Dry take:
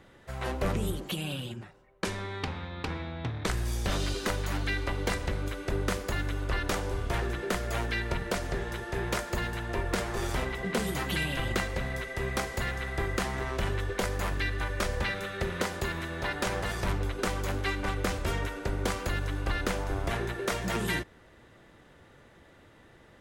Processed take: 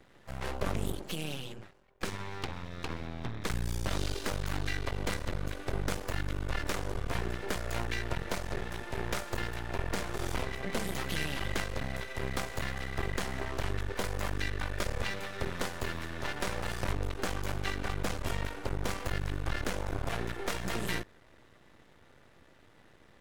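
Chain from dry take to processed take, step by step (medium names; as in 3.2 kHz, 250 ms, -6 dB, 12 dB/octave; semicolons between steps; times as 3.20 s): half-wave rectifier; harmony voices +7 st -16 dB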